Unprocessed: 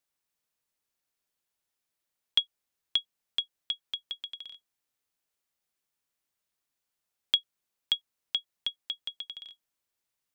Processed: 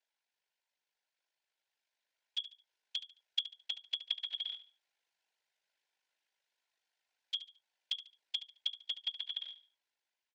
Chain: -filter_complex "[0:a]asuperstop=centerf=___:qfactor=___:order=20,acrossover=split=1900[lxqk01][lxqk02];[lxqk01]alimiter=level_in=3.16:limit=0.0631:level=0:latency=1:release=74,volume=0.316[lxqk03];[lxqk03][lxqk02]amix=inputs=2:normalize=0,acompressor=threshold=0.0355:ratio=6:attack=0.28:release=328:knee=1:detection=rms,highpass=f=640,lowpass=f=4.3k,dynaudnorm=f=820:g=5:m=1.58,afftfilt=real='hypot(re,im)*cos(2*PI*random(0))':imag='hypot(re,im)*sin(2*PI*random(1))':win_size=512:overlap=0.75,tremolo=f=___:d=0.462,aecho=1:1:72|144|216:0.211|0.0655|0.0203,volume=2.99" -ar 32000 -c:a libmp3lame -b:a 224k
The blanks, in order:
1200, 3.9, 51